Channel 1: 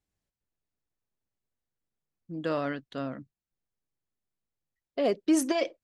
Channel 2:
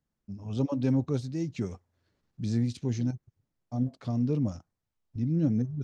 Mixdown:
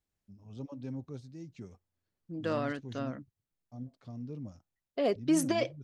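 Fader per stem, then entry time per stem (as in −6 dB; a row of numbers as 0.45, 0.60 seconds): −2.5, −14.0 decibels; 0.00, 0.00 seconds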